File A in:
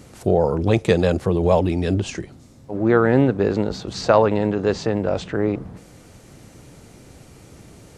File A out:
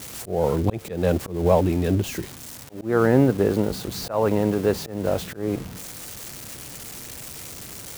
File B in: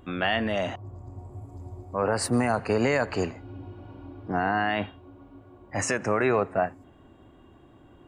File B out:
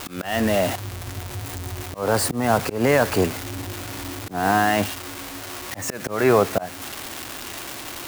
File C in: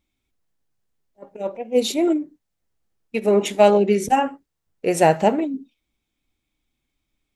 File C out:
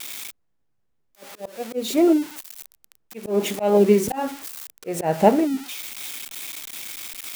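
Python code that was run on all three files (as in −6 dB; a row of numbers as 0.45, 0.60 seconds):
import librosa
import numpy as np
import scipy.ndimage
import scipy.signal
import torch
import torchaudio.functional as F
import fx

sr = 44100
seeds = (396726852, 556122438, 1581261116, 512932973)

y = x + 0.5 * 10.0 ** (-17.5 / 20.0) * np.diff(np.sign(x), prepend=np.sign(x[:1]))
y = fx.high_shelf(y, sr, hz=3000.0, db=-11.0)
y = fx.auto_swell(y, sr, attack_ms=215.0)
y = y * 10.0 ** (-24 / 20.0) / np.sqrt(np.mean(np.square(y)))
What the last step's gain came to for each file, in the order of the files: −0.5, +8.0, +3.0 decibels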